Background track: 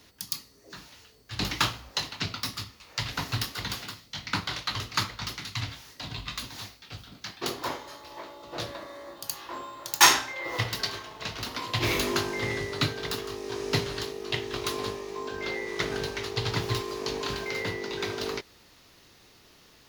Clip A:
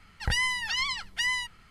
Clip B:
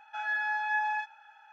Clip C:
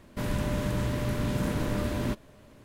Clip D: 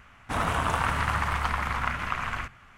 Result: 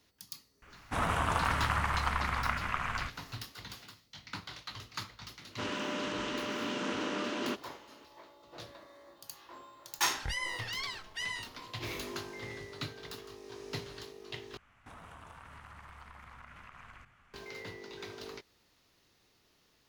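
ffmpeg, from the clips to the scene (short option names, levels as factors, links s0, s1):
-filter_complex "[4:a]asplit=2[s0][s1];[0:a]volume=0.224[s2];[3:a]highpass=f=260:w=0.5412,highpass=f=260:w=1.3066,equalizer=f=600:t=q:w=4:g=-4,equalizer=f=1300:t=q:w=4:g=5,equalizer=f=2900:t=q:w=4:g=9,equalizer=f=5900:t=q:w=4:g=4,lowpass=f=6700:w=0.5412,lowpass=f=6700:w=1.3066[s3];[1:a]flanger=delay=17.5:depth=7.9:speed=2.3[s4];[s1]acompressor=threshold=0.0141:ratio=6:attack=3.2:release=140:knee=1:detection=peak[s5];[s2]asplit=2[s6][s7];[s6]atrim=end=14.574[s8];[s5]atrim=end=2.77,asetpts=PTS-STARTPTS,volume=0.266[s9];[s7]atrim=start=17.336[s10];[s0]atrim=end=2.77,asetpts=PTS-STARTPTS,volume=0.631,afade=t=in:d=0.004:c=hsin,afade=t=out:st=2.766:d=0.004:c=hsin,adelay=620[s11];[s3]atrim=end=2.64,asetpts=PTS-STARTPTS,volume=0.841,afade=t=in:d=0.004:c=hsin,afade=t=out:st=2.636:d=0.004:c=hsin,adelay=238581S[s12];[s4]atrim=end=1.7,asetpts=PTS-STARTPTS,volume=0.473,afade=t=in:d=0.004:c=hsin,afade=t=out:st=1.696:d=0.004:c=hsin,adelay=9980[s13];[s8][s9]acrossfade=d=0.004:c1=hsin:c2=hsin[s14];[s14][s10]acrossfade=d=0.004:c1=hsin:c2=hsin[s15];[s15][s11][s12][s13]amix=inputs=4:normalize=0"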